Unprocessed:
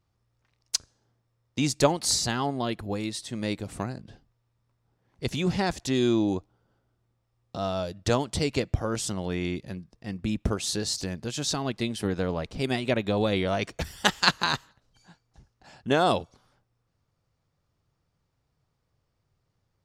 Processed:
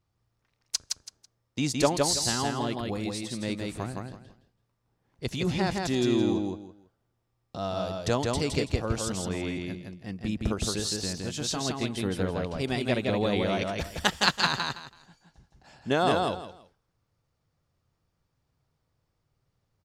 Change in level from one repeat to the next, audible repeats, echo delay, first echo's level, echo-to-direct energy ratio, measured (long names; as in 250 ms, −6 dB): −13.0 dB, 3, 165 ms, −3.0 dB, −3.0 dB